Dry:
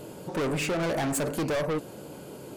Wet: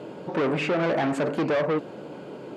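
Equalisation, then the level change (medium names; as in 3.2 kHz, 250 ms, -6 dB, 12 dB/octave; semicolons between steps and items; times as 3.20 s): band-pass 170–2900 Hz; +4.5 dB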